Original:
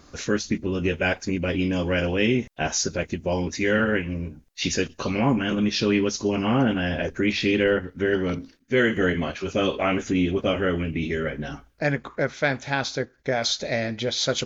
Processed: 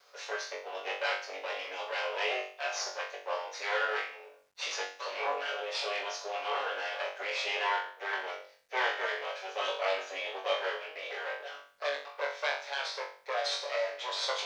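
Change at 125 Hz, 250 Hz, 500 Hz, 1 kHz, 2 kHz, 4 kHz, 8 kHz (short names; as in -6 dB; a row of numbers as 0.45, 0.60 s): under -40 dB, -36.5 dB, -11.0 dB, -2.5 dB, -6.5 dB, -6.0 dB, n/a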